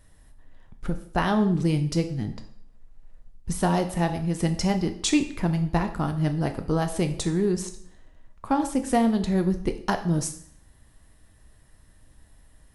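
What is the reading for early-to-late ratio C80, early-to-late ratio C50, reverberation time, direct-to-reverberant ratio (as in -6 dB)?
14.5 dB, 11.5 dB, 0.60 s, 6.5 dB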